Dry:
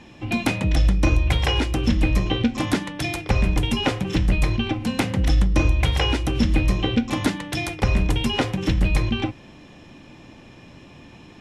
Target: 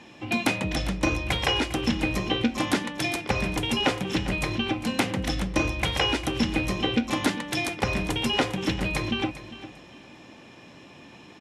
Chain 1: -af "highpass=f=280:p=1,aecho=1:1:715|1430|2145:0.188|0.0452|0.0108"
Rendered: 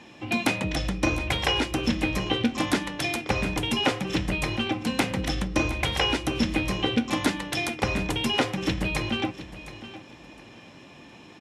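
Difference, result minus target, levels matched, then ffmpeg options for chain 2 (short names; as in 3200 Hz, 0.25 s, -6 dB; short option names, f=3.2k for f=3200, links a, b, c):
echo 0.313 s late
-af "highpass=f=280:p=1,aecho=1:1:402|804|1206:0.188|0.0452|0.0108"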